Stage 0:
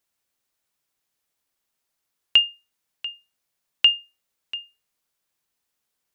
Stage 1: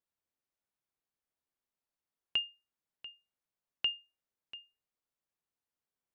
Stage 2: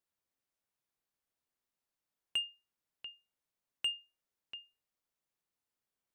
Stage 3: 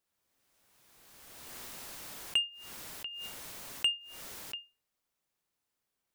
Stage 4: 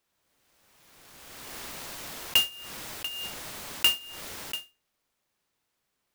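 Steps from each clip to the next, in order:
high shelf 2000 Hz -10.5 dB; gain -9 dB
soft clip -28 dBFS, distortion -13 dB; gain +1 dB
backwards sustainer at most 26 dB/s; gain +5 dB
clock jitter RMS 0.026 ms; gain +7 dB

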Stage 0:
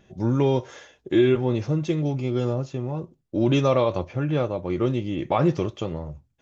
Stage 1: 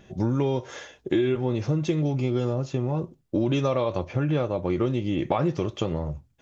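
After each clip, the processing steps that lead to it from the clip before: compressor 5:1, threshold -26 dBFS, peak gain reduction 11 dB; gain +5 dB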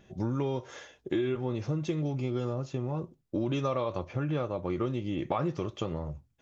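dynamic EQ 1200 Hz, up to +5 dB, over -46 dBFS, Q 3.4; gain -6.5 dB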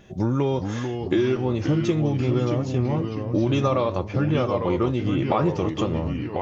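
echoes that change speed 0.393 s, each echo -2 st, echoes 3, each echo -6 dB; gain +8 dB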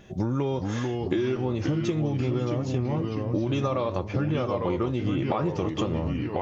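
compressor, threshold -22 dBFS, peak gain reduction 6.5 dB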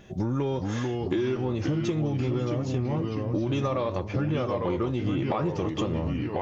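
soft clip -15.5 dBFS, distortion -23 dB

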